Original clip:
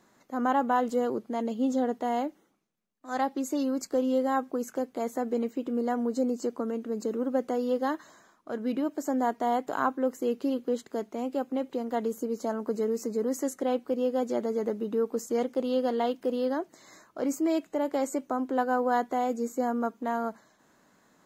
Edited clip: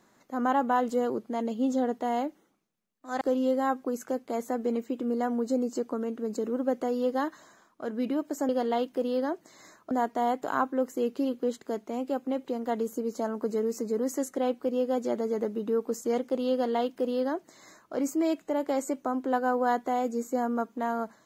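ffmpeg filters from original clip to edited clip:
ffmpeg -i in.wav -filter_complex "[0:a]asplit=4[link_01][link_02][link_03][link_04];[link_01]atrim=end=3.212[link_05];[link_02]atrim=start=3.878:end=9.162[link_06];[link_03]atrim=start=15.768:end=17.192[link_07];[link_04]atrim=start=9.158[link_08];[link_05][link_06]acrossfade=duration=0.004:curve1=hsin:curve2=hsin[link_09];[link_09][link_07]acrossfade=duration=0.004:curve1=hsin:curve2=hsin[link_10];[link_10][link_08]acrossfade=duration=0.004:curve1=hsin:curve2=hsin" out.wav

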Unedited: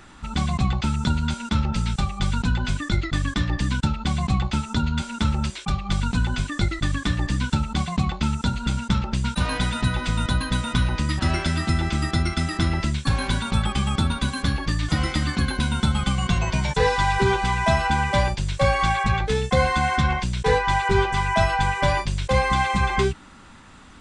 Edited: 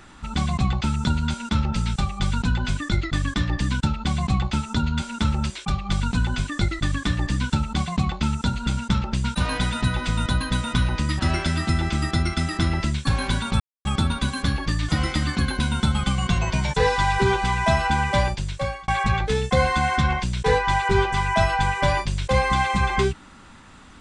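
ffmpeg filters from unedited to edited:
ffmpeg -i in.wav -filter_complex "[0:a]asplit=4[link_01][link_02][link_03][link_04];[link_01]atrim=end=13.6,asetpts=PTS-STARTPTS,afade=type=out:start_time=13.596:duration=0.004:curve=hsin[link_05];[link_02]atrim=start=13.6:end=13.85,asetpts=PTS-STARTPTS,volume=0[link_06];[link_03]atrim=start=13.85:end=18.88,asetpts=PTS-STARTPTS,afade=type=in:duration=0.004:curve=hsin,afade=type=out:start_time=4.24:duration=0.79:curve=qsin[link_07];[link_04]atrim=start=18.88,asetpts=PTS-STARTPTS,afade=type=in:duration=0.004:curve=hsin[link_08];[link_05][link_06][link_07][link_08]concat=n=4:v=0:a=1" out.wav

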